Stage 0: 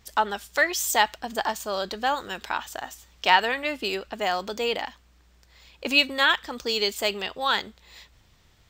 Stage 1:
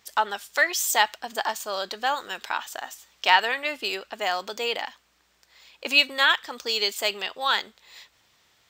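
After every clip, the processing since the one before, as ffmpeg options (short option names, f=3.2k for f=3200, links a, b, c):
-af "highpass=f=660:p=1,volume=1.5dB"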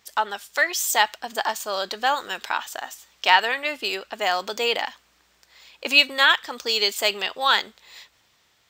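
-af "dynaudnorm=f=110:g=17:m=5.5dB"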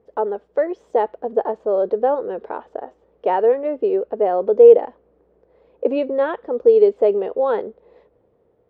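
-af "lowpass=f=470:t=q:w=4.9,volume=6dB"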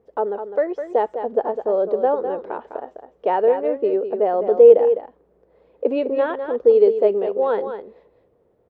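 -af "aecho=1:1:205:0.355,volume=-1dB"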